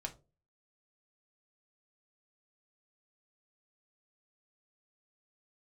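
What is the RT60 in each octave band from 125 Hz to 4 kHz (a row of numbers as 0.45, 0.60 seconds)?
0.50, 0.40, 0.40, 0.25, 0.20, 0.20 seconds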